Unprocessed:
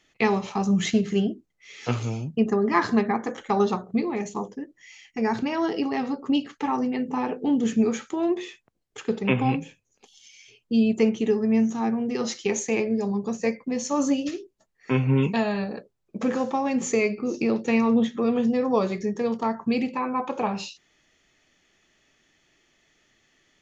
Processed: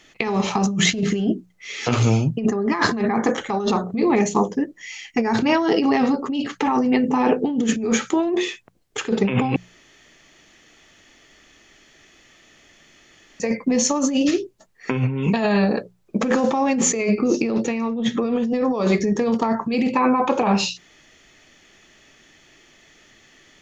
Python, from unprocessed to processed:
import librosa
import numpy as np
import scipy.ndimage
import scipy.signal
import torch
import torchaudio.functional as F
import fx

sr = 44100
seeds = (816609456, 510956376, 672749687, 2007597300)

y = fx.edit(x, sr, fx.room_tone_fill(start_s=9.56, length_s=3.84), tone=tone)
y = fx.hum_notches(y, sr, base_hz=60, count=3)
y = fx.over_compress(y, sr, threshold_db=-28.0, ratio=-1.0)
y = y * 10.0 ** (8.5 / 20.0)